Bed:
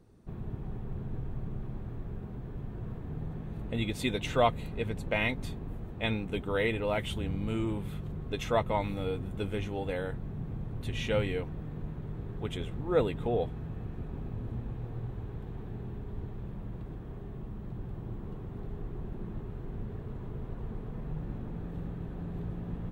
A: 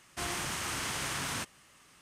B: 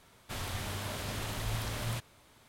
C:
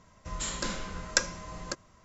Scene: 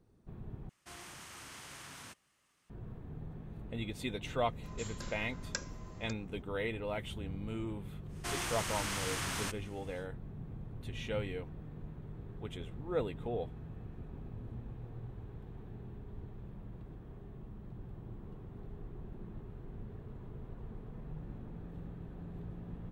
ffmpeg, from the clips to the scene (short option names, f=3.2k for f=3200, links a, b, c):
-filter_complex "[1:a]asplit=2[a][b];[0:a]volume=-7.5dB,asplit=2[c][d];[c]atrim=end=0.694[e];[a]atrim=end=2.01,asetpts=PTS-STARTPTS,volume=-14.5dB[f];[d]atrim=start=2.696[g];[3:a]atrim=end=2.04,asetpts=PTS-STARTPTS,volume=-13.5dB,afade=t=in:d=0.004:c=hsin,afade=t=out:st=2.036:d=0.004:c=hsin,adelay=4380[h];[b]atrim=end=2.01,asetpts=PTS-STARTPTS,volume=-2.5dB,afade=t=in:d=0.1,afade=t=out:st=1.91:d=0.1,adelay=8070[i];[e][f]acrossfade=d=0.004:c1=hsin:c2=hsin[j];[j][g]acrossfade=d=0.004:c1=hsin:c2=hsin[k];[k][h][i]amix=inputs=3:normalize=0"